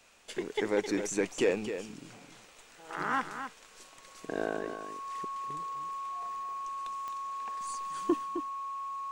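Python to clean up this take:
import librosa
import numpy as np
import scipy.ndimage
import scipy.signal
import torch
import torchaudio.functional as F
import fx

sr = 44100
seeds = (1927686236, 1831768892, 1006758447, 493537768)

y = fx.fix_declick_ar(x, sr, threshold=10.0)
y = fx.notch(y, sr, hz=1100.0, q=30.0)
y = fx.fix_echo_inverse(y, sr, delay_ms=262, level_db=-9.0)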